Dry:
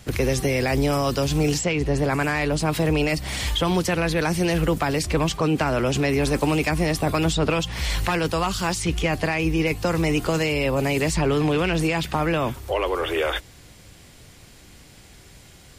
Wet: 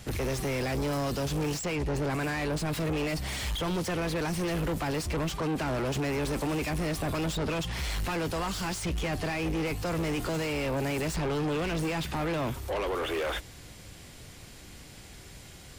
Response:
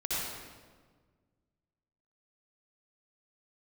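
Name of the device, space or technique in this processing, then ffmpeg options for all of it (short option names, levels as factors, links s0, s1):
saturation between pre-emphasis and de-emphasis: -af "highshelf=f=2900:g=9.5,asoftclip=type=tanh:threshold=0.0447,highshelf=f=2900:g=-9.5"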